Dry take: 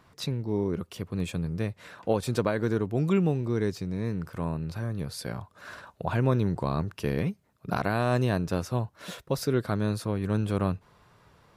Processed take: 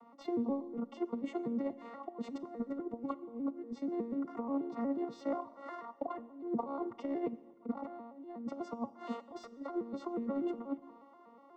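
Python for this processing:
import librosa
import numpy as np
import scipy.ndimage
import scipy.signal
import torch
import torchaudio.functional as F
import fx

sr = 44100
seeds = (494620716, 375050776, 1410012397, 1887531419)

y = fx.vocoder_arp(x, sr, chord='minor triad', root=58, every_ms=121)
y = fx.tilt_eq(y, sr, slope=3.5)
y = fx.over_compress(y, sr, threshold_db=-39.0, ratio=-0.5)
y = np.clip(10.0 ** (28.0 / 20.0) * y, -1.0, 1.0) / 10.0 ** (28.0 / 20.0)
y = scipy.signal.savgol_filter(y, 65, 4, mode='constant')
y = fx.rev_schroeder(y, sr, rt60_s=1.4, comb_ms=29, drr_db=16.5)
y = y * 10.0 ** (2.5 / 20.0)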